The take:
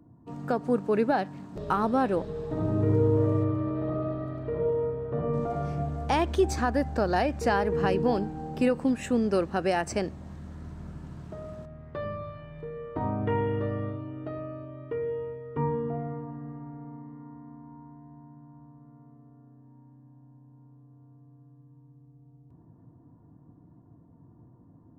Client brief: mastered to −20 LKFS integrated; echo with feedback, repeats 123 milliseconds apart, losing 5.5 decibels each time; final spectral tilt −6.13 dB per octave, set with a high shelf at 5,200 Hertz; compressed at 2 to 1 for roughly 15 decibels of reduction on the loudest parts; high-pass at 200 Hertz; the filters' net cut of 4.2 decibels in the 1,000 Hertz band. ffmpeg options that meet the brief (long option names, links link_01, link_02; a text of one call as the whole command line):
ffmpeg -i in.wav -af "highpass=200,equalizer=frequency=1000:width_type=o:gain=-6,highshelf=frequency=5200:gain=3,acompressor=threshold=-48dB:ratio=2,aecho=1:1:123|246|369|492|615|738|861:0.531|0.281|0.149|0.079|0.0419|0.0222|0.0118,volume=23dB" out.wav